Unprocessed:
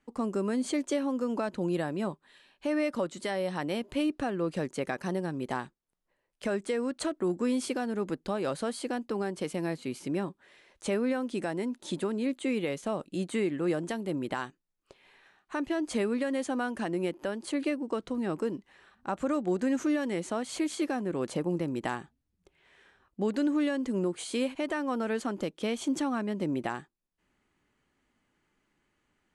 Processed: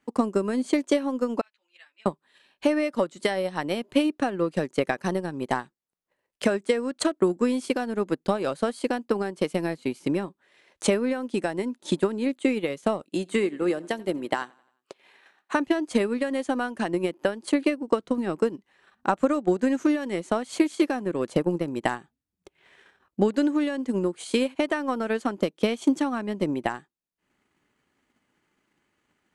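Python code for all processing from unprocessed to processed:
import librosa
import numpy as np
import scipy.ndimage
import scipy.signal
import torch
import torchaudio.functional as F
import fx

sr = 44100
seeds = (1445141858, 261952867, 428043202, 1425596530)

y = fx.chain(x, sr, fx.ladder_bandpass(hz=2900.0, resonance_pct=35),
    fx.ensemble(), at=(1.41, 2.06))
y = fx.chain(y, sr, fx.highpass(hz=220.0, slope=12),
    fx.echo_feedback(ms=88, feedback_pct=52, wet_db=-19), at=(13.04, 15.55))
y = fx.highpass(y, sr, hz=120.0, slope=6)
y = fx.transient(y, sr, attack_db=9, sustain_db=-7)
y = y * librosa.db_to_amplitude(3.0)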